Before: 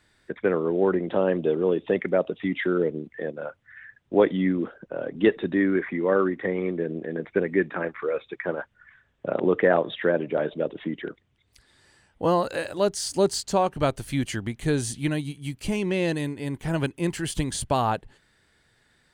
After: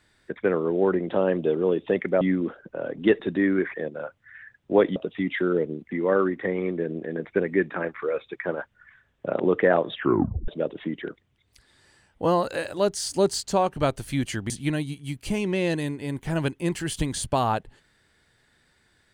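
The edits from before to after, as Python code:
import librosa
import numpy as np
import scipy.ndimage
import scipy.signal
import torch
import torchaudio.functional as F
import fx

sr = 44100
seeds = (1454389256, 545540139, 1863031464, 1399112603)

y = fx.edit(x, sr, fx.swap(start_s=2.21, length_s=0.95, other_s=4.38, other_length_s=1.53),
    fx.tape_stop(start_s=9.96, length_s=0.52),
    fx.cut(start_s=14.5, length_s=0.38), tone=tone)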